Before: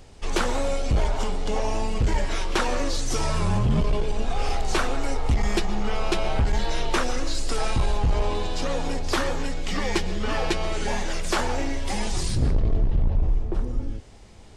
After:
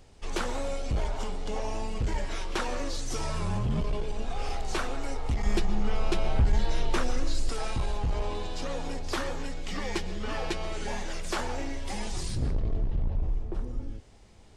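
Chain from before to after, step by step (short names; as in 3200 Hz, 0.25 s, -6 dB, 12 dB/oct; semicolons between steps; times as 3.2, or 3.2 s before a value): 5.46–7.49 low shelf 280 Hz +7 dB; gain -7 dB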